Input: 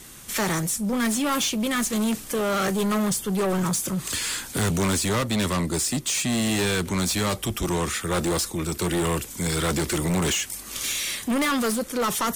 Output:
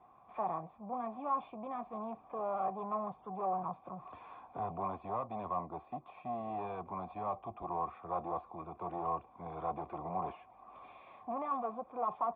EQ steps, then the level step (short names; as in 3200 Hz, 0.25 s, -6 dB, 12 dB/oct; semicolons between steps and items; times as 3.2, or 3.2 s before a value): HPF 61 Hz; dynamic EQ 1400 Hz, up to -3 dB, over -37 dBFS, Q 0.87; vocal tract filter a; +5.0 dB